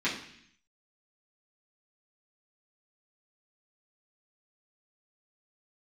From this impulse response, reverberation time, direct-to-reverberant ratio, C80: 0.65 s, -9.5 dB, 10.5 dB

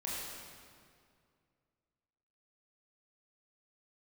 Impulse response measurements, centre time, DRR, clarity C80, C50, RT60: 130 ms, -7.0 dB, -0.5 dB, -2.0 dB, 2.2 s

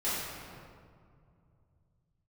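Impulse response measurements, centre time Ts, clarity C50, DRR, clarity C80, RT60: 131 ms, -2.5 dB, -12.5 dB, 0.0 dB, 2.3 s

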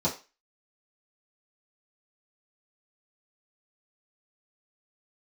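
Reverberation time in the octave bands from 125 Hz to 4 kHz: 0.20 s, 0.25 s, 0.30 s, 0.30 s, 0.30 s, 0.30 s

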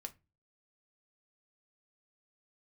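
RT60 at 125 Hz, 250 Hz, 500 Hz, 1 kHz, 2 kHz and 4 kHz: 0.50 s, 0.40 s, 0.30 s, 0.25 s, 0.25 s, 0.15 s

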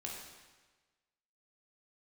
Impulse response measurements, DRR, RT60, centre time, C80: -2.5 dB, 1.3 s, 66 ms, 3.5 dB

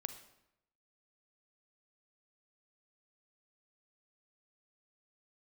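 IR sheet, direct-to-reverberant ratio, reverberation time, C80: 9.0 dB, 0.85 s, 13.0 dB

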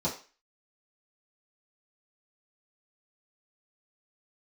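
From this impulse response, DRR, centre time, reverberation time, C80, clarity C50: -9.5 dB, 22 ms, 0.35 s, 14.5 dB, 9.5 dB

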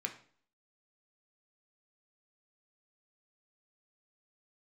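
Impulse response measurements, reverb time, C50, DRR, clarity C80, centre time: 0.50 s, 11.5 dB, 3.5 dB, 15.5 dB, 11 ms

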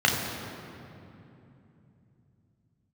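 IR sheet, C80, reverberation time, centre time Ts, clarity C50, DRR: 4.0 dB, 2.9 s, 89 ms, 2.5 dB, -1.5 dB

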